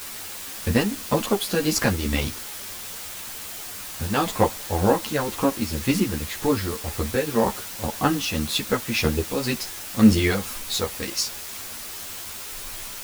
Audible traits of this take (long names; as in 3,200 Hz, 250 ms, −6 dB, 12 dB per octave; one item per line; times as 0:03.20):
tremolo triangle 1.9 Hz, depth 70%
a quantiser's noise floor 6 bits, dither triangular
a shimmering, thickened sound